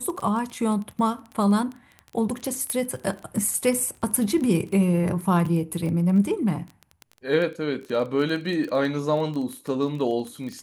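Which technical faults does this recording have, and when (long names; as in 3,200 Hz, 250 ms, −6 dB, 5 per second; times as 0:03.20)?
surface crackle 16 per second −29 dBFS
0:02.70: click −15 dBFS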